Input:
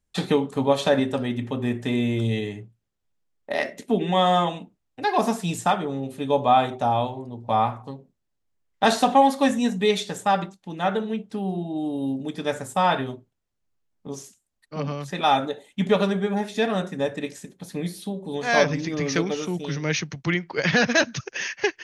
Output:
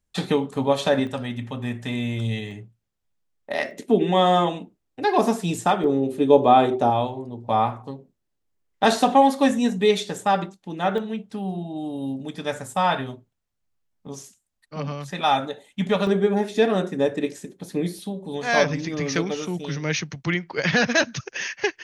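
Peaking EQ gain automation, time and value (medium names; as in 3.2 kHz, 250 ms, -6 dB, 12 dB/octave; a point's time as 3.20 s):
peaking EQ 360 Hz 0.94 oct
-1 dB
from 1.07 s -9.5 dB
from 2.51 s -2.5 dB
from 3.71 s +6.5 dB
from 5.84 s +13.5 dB
from 6.90 s +3.5 dB
from 10.98 s -4 dB
from 16.07 s +8 dB
from 17.99 s -1 dB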